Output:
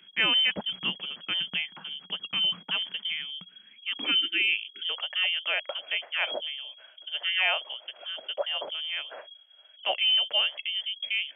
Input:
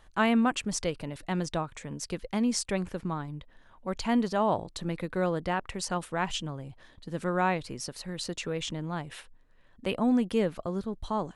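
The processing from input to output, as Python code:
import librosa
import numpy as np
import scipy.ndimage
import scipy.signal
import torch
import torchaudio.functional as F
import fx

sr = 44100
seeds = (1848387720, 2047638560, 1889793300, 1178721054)

y = fx.freq_invert(x, sr, carrier_hz=3300)
y = fx.spec_erase(y, sr, start_s=4.11, length_s=0.78, low_hz=420.0, high_hz=1300.0)
y = fx.filter_sweep_highpass(y, sr, from_hz=180.0, to_hz=610.0, start_s=3.45, end_s=5.17, q=6.1)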